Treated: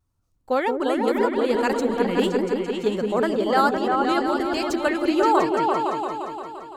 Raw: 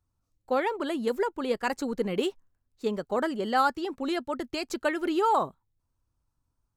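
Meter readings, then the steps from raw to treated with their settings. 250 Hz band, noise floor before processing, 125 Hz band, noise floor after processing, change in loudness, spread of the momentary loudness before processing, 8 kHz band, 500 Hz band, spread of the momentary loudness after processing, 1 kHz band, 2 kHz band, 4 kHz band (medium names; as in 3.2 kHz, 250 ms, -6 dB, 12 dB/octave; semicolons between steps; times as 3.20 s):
+8.5 dB, -80 dBFS, +8.0 dB, -68 dBFS, +7.0 dB, 8 LU, +5.0 dB, +8.0 dB, 6 LU, +7.0 dB, +6.5 dB, +5.5 dB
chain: delay with an opening low-pass 172 ms, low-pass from 400 Hz, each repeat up 2 oct, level 0 dB; vibrato 0.94 Hz 33 cents; trim +4 dB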